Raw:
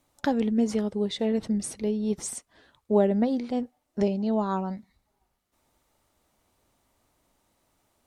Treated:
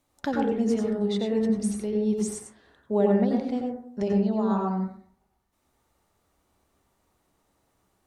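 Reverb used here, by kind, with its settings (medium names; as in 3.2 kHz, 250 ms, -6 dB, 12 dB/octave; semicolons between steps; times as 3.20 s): plate-style reverb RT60 0.57 s, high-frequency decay 0.25×, pre-delay 80 ms, DRR -1 dB; trim -3.5 dB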